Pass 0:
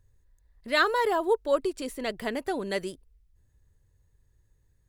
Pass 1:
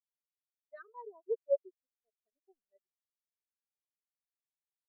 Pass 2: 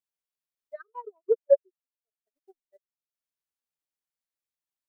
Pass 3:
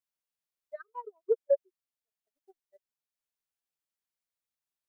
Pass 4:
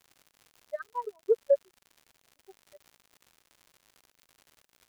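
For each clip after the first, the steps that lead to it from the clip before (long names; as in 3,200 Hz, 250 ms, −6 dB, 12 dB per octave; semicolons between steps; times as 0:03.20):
centre clipping without the shift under −29 dBFS; every bin expanded away from the loudest bin 4 to 1; level −9 dB
transient designer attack +12 dB, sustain −11 dB
parametric band 350 Hz −3.5 dB 0.7 octaves; brickwall limiter −15.5 dBFS, peak gain reduction 6 dB; level −1 dB
in parallel at +1.5 dB: downward compressor, threshold −34 dBFS, peak gain reduction 13.5 dB; on the sum: surface crackle 150 per second −44 dBFS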